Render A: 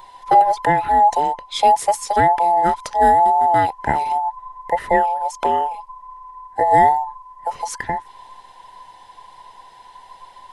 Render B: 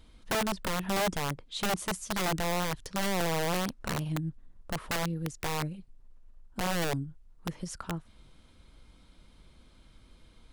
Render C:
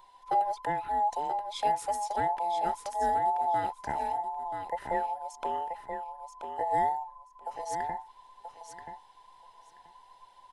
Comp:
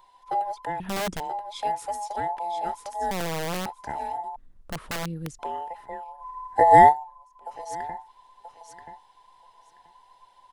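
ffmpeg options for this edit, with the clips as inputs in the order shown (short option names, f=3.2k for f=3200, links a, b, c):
-filter_complex "[1:a]asplit=3[a][b][c];[2:a]asplit=5[d][e][f][g][h];[d]atrim=end=0.802[i];[a]atrim=start=0.798:end=1.202[j];[e]atrim=start=1.198:end=3.112[k];[b]atrim=start=3.108:end=3.662[l];[f]atrim=start=3.658:end=4.362[m];[c]atrim=start=4.358:end=5.392[n];[g]atrim=start=5.388:end=6.25[o];[0:a]atrim=start=6.19:end=6.94[p];[h]atrim=start=6.88[q];[i][j]acrossfade=d=0.004:c1=hsin:c2=hsin[r];[r][k]acrossfade=d=0.004:c1=hsin:c2=hsin[s];[s][l]acrossfade=d=0.004:c1=hsin:c2=hsin[t];[t][m]acrossfade=d=0.004:c1=hsin:c2=hsin[u];[u][n]acrossfade=d=0.004:c1=hsin:c2=hsin[v];[v][o]acrossfade=d=0.004:c1=hsin:c2=hsin[w];[w][p]acrossfade=d=0.06:c1=tri:c2=tri[x];[x][q]acrossfade=d=0.06:c1=tri:c2=tri"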